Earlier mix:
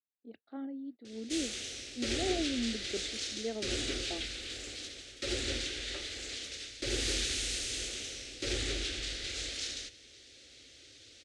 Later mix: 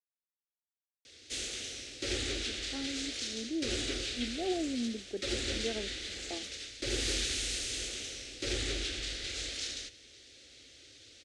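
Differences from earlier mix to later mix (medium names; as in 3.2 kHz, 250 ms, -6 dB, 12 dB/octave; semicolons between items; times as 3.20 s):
speech: entry +2.20 s; second sound: muted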